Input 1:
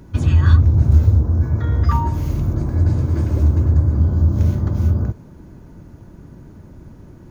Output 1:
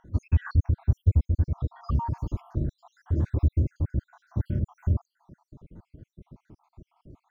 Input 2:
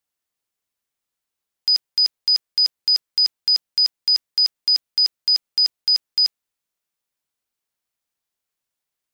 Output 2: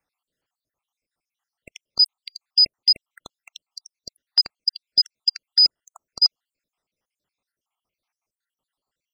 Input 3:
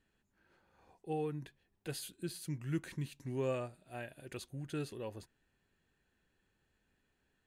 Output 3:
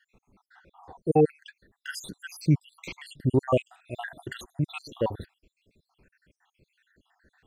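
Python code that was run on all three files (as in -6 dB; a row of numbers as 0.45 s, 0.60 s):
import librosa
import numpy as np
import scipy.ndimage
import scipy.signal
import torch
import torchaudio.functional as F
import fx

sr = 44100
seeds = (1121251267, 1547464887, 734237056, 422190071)

y = fx.spec_dropout(x, sr, seeds[0], share_pct=72)
y = fx.lowpass(y, sr, hz=2400.0, slope=6)
y = librosa.util.normalize(y) * 10.0 ** (-9 / 20.0)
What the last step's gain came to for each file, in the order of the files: -6.0 dB, +10.0 dB, +19.0 dB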